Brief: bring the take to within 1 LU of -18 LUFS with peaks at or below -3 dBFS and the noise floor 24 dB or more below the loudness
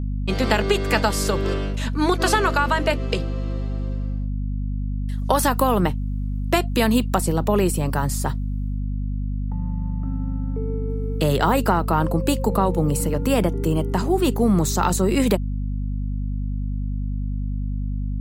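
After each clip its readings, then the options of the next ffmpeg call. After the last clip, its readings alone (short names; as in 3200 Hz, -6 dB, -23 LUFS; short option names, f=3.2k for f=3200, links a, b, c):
hum 50 Hz; harmonics up to 250 Hz; hum level -22 dBFS; loudness -22.5 LUFS; peak -2.0 dBFS; loudness target -18.0 LUFS
-> -af "bandreject=f=50:t=h:w=6,bandreject=f=100:t=h:w=6,bandreject=f=150:t=h:w=6,bandreject=f=200:t=h:w=6,bandreject=f=250:t=h:w=6"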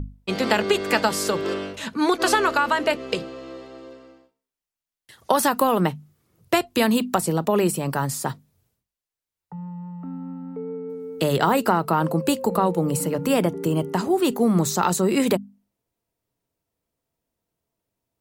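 hum none; loudness -22.5 LUFS; peak -3.0 dBFS; loudness target -18.0 LUFS
-> -af "volume=4.5dB,alimiter=limit=-3dB:level=0:latency=1"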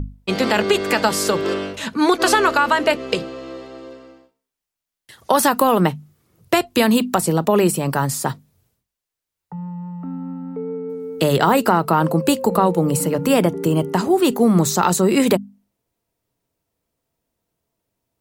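loudness -18.0 LUFS; peak -3.0 dBFS; noise floor -85 dBFS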